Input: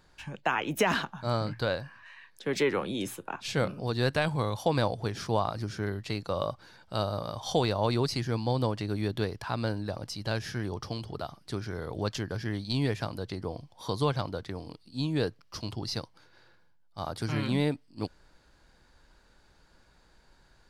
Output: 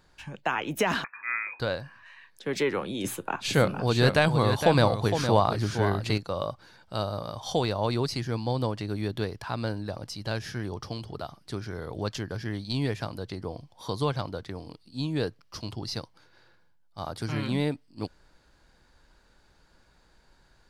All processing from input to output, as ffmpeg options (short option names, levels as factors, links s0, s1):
-filter_complex "[0:a]asettb=1/sr,asplit=3[s0][s1][s2];[s0]atrim=end=1.044[s3];[s1]atrim=start=1.04:end=1.6,asetpts=PTS-STARTPTS,afade=t=in:d=0.004:c=qsin,afade=t=out:st=0.556:d=0.004:c=qsin,lowshelf=f=140:g=-10,lowpass=f=2200:t=q:w=0.5098,lowpass=f=2200:t=q:w=0.6013,lowpass=f=2200:t=q:w=0.9,lowpass=f=2200:t=q:w=2.563,afreqshift=-2600[s4];[s2]atrim=start=1.596[s5];[s3][s4]acrossfade=d=0.004:c1=hsin:c2=qsin[s6];[s6][s5]acrossfade=d=0.004:c1=qsin:c2=hsin,asettb=1/sr,asplit=3[s7][s8][s9];[s7]atrim=end=3.044[s10];[s8]atrim=start=3.04:end=6.18,asetpts=PTS-STARTPTS,afade=t=in:d=0.004:c=qsin,afade=t=out:st=3.136:d=0.004:c=qsin,bandreject=f=5400:w=14,aecho=1:1:462:0.398,atrim=end_sample=138474,acontrast=50[s11];[s9]atrim=start=6.176[s12];[s10][s11]acrossfade=d=0.004:c1=hsin:c2=qsin[s13];[s13][s12]acrossfade=d=0.004:c1=qsin:c2=hsin"